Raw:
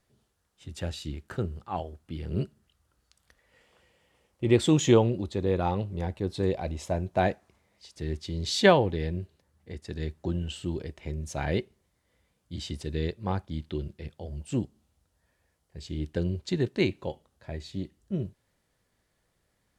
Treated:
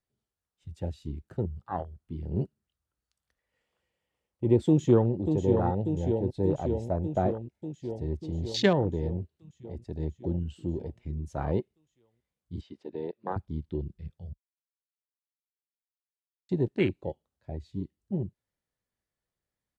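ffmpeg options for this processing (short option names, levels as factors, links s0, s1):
-filter_complex "[0:a]asplit=2[s0][s1];[s1]afade=t=in:st=4.67:d=0.01,afade=t=out:st=5.12:d=0.01,aecho=0:1:590|1180|1770|2360|2950|3540|4130|4720|5310|5900|6490|7080:0.501187|0.37589|0.281918|0.211438|0.158579|0.118934|0.0892006|0.0669004|0.0501753|0.0376315|0.0282236|0.0211677[s2];[s0][s2]amix=inputs=2:normalize=0,asettb=1/sr,asplit=3[s3][s4][s5];[s3]atrim=end=5.674[s6];[s4]atrim=start=5.67:end=8.01,asetpts=PTS-STARTPTS,afade=t=in:d=0.004:c=qsin,afade=t=out:st=2.336:d=0.004:c=qsin,asuperstop=centerf=1100:order=4:qfactor=3.5[s7];[s5]atrim=start=8.006[s8];[s6][s7]acrossfade=d=0.004:c1=hsin:c2=qsin[s9];[s9][s8]acrossfade=d=0.004:c1=qsin:c2=hsin,asettb=1/sr,asplit=3[s10][s11][s12];[s10]atrim=end=12.614[s13];[s11]atrim=start=12.61:end=13.36,asetpts=PTS-STARTPTS,afade=t=in:d=0.004:c=qsin,afade=t=out:st=0.746:d=0.004:c=qsin,highpass=320,lowpass=3400[s14];[s12]atrim=start=13.356[s15];[s13][s14]acrossfade=d=0.004:c1=hsin:c2=qsin[s16];[s16][s15]acrossfade=d=0.004:c1=qsin:c2=hsin,asplit=3[s17][s18][s19];[s17]atrim=end=14.33,asetpts=PTS-STARTPTS,afade=t=out:st=14.326:d=0.004:c=hsin[s20];[s18]atrim=start=14.33:end=16.49,asetpts=PTS-STARTPTS,volume=0[s21];[s19]atrim=start=16.49,asetpts=PTS-STARTPTS,afade=t=in:d=0.004:c=hsin[s22];[s20][s21][s22]concat=n=3:v=0:a=1,afwtdn=0.0282,acrossover=split=380[s23][s24];[s24]acompressor=threshold=0.0562:ratio=6[s25];[s23][s25]amix=inputs=2:normalize=0"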